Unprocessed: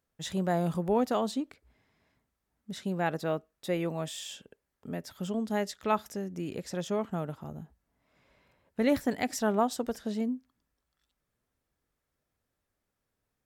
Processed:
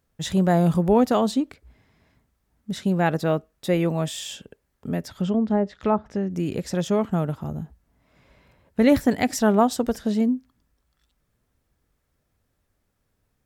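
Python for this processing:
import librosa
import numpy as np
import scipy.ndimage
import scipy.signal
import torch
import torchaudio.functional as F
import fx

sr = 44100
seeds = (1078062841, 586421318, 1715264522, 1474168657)

y = fx.env_lowpass_down(x, sr, base_hz=880.0, full_db=-25.5, at=(5.07, 6.29), fade=0.02)
y = fx.low_shelf(y, sr, hz=190.0, db=8.0)
y = y * 10.0 ** (7.0 / 20.0)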